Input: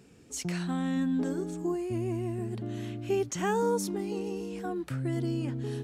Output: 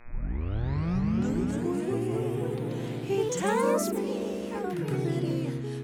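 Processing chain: tape start at the beginning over 1.37 s; buzz 120 Hz, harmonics 21, -57 dBFS -1 dB/oct; echoes that change speed 0.416 s, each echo +2 st, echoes 3

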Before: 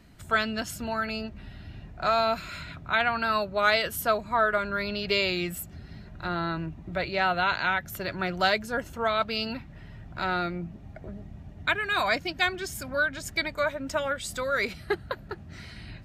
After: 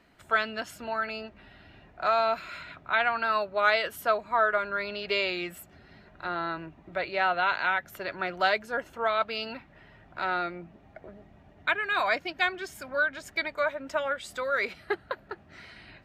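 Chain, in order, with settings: tone controls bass -15 dB, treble -10 dB

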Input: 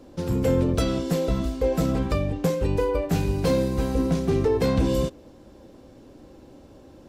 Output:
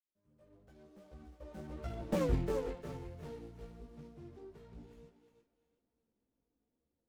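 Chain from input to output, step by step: opening faded in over 1.90 s; Doppler pass-by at 2.23, 45 m/s, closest 3.1 m; on a send: thinning echo 0.354 s, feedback 30%, high-pass 460 Hz, level -7 dB; on the sum: chorus voices 2, 0.94 Hz, delay 16 ms, depth 3 ms; running maximum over 9 samples

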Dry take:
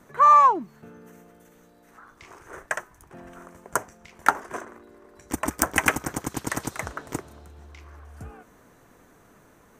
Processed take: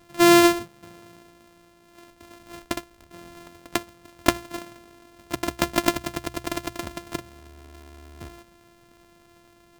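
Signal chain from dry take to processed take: sample sorter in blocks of 128 samples; notches 60/120 Hz

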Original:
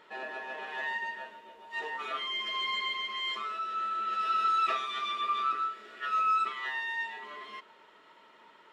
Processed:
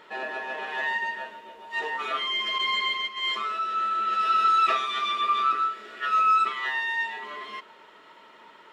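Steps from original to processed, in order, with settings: 2.58–3.32 gate -35 dBFS, range -9 dB; gain +6.5 dB

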